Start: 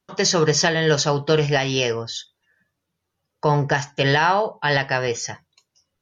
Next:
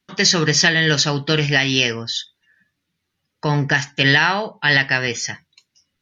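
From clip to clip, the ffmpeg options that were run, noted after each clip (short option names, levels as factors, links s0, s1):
-af "equalizer=f=250:t=o:w=1:g=7,equalizer=f=500:t=o:w=1:g=-6,equalizer=f=1000:t=o:w=1:g=-4,equalizer=f=2000:t=o:w=1:g=8,equalizer=f=4000:t=o:w=1:g=6"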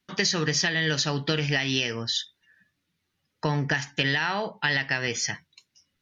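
-af "acompressor=threshold=0.1:ratio=5,volume=0.794"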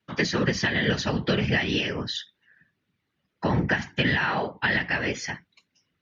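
-af "afftfilt=real='hypot(re,im)*cos(2*PI*random(0))':imag='hypot(re,im)*sin(2*PI*random(1))':win_size=512:overlap=0.75,highpass=84,bass=f=250:g=2,treble=f=4000:g=-13,volume=2.51"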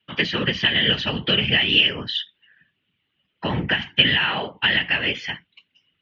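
-af "lowpass=f=3000:t=q:w=6.9,volume=0.891"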